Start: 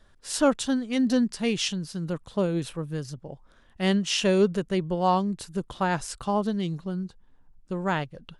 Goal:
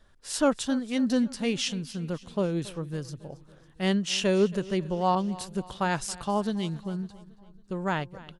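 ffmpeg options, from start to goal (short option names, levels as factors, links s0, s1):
-filter_complex "[0:a]aecho=1:1:276|552|828|1104:0.106|0.0583|0.032|0.0176,asettb=1/sr,asplit=3[s0][s1][s2];[s0]atrim=end=5.154[s3];[s1]atrim=start=5.15:end=7.89,asetpts=PTS-STARTPTS,afade=t=in:d=0.004:c=qsin,afade=t=out:st=2.736:d=0.004:c=qsin,adynamicequalizer=threshold=0.0112:dfrequency=1900:dqfactor=0.7:tfrequency=1900:tqfactor=0.7:attack=5:release=100:ratio=0.375:range=2:mode=boostabove:tftype=highshelf[s4];[s2]atrim=start=7.886[s5];[s3][s4]acrossfade=d=0.004:c1=hsin:c2=qsin[s6];[s6][s5]acrossfade=d=0.004:c1=qsin:c2=hsin,volume=0.794"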